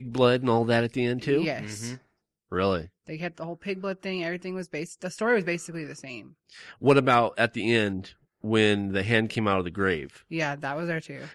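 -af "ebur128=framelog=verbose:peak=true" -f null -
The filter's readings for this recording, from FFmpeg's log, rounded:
Integrated loudness:
  I:         -26.4 LUFS
  Threshold: -36.9 LUFS
Loudness range:
  LRA:         7.8 LU
  Threshold: -47.2 LUFS
  LRA low:   -32.1 LUFS
  LRA high:  -24.4 LUFS
True peak:
  Peak:       -7.4 dBFS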